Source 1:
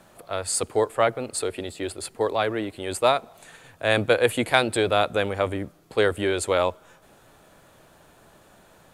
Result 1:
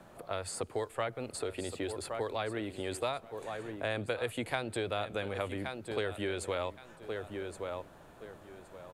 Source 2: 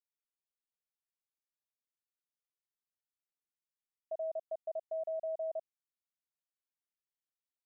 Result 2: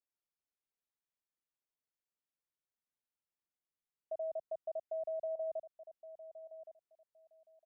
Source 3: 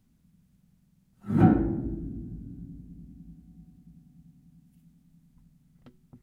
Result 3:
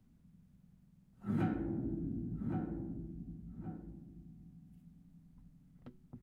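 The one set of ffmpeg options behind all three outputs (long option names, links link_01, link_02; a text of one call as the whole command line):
ffmpeg -i in.wav -filter_complex "[0:a]highshelf=frequency=2400:gain=-9.5,aecho=1:1:1118|2236:0.2|0.0399,acrossover=split=95|1900[link_01][link_02][link_03];[link_01]acompressor=threshold=-51dB:ratio=4[link_04];[link_02]acompressor=threshold=-35dB:ratio=4[link_05];[link_03]acompressor=threshold=-40dB:ratio=4[link_06];[link_04][link_05][link_06]amix=inputs=3:normalize=0" out.wav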